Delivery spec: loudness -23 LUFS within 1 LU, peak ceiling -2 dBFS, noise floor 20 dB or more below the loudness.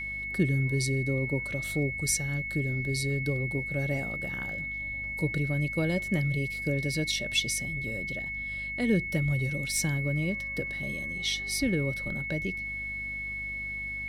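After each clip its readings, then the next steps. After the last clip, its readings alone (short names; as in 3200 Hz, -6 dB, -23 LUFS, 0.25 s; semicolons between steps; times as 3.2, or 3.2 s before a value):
hum 50 Hz; harmonics up to 250 Hz; hum level -44 dBFS; steady tone 2200 Hz; tone level -33 dBFS; loudness -29.5 LUFS; peak -14.0 dBFS; loudness target -23.0 LUFS
-> notches 50/100/150/200/250 Hz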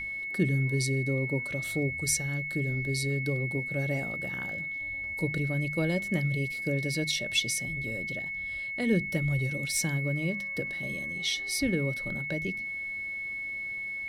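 hum none; steady tone 2200 Hz; tone level -33 dBFS
-> notch 2200 Hz, Q 30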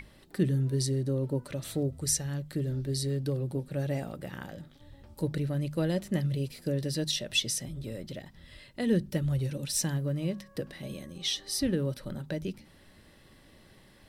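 steady tone none; loudness -31.5 LUFS; peak -14.0 dBFS; loudness target -23.0 LUFS
-> gain +8.5 dB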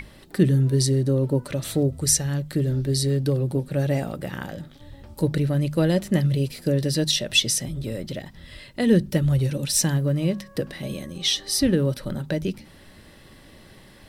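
loudness -23.0 LUFS; peak -5.5 dBFS; noise floor -49 dBFS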